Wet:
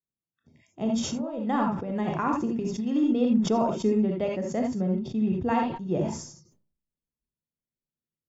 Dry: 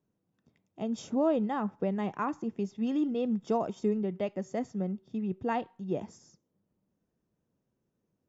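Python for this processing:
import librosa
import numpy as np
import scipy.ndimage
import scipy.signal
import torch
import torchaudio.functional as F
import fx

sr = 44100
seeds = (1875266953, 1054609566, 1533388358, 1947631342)

y = fx.noise_reduce_blind(x, sr, reduce_db=27)
y = fx.low_shelf(y, sr, hz=95.0, db=10.5)
y = fx.over_compress(y, sr, threshold_db=-31.0, ratio=-0.5, at=(0.83, 2.96))
y = fx.rev_gated(y, sr, seeds[0], gate_ms=100, shape='rising', drr_db=1.0)
y = fx.sustainer(y, sr, db_per_s=78.0)
y = y * librosa.db_to_amplitude(2.5)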